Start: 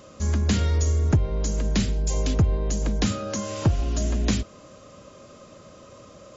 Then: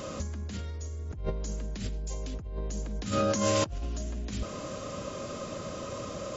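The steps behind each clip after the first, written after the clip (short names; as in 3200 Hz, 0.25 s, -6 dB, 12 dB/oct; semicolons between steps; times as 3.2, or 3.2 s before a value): negative-ratio compressor -33 dBFS, ratio -1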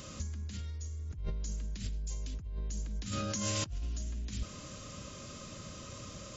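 bell 600 Hz -13.5 dB 2.7 oct; gain -1.5 dB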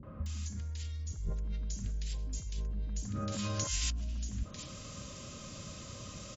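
three bands offset in time lows, mids, highs 30/260 ms, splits 400/1500 Hz; gain +1 dB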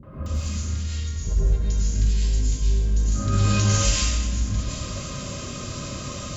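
plate-style reverb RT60 1.8 s, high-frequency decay 0.65×, pre-delay 85 ms, DRR -9 dB; gain +4.5 dB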